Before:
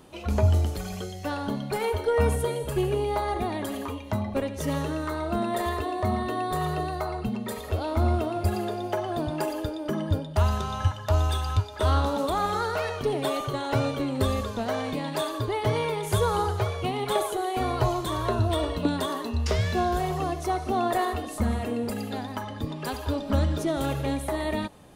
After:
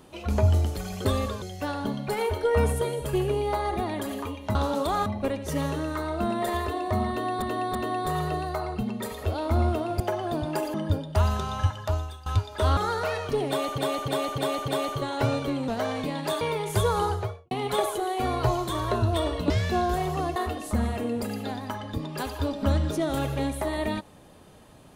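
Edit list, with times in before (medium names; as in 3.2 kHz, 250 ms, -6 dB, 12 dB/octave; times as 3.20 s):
6.21–6.54 s: loop, 3 plays
8.46–8.85 s: delete
9.59–9.95 s: delete
11.03–11.47 s: fade out quadratic, to -18 dB
11.98–12.49 s: move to 4.18 s
13.20–13.50 s: loop, 5 plays
14.20–14.57 s: move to 1.05 s
15.30–15.78 s: delete
16.44–16.88 s: studio fade out
18.87–19.53 s: delete
20.39–21.03 s: delete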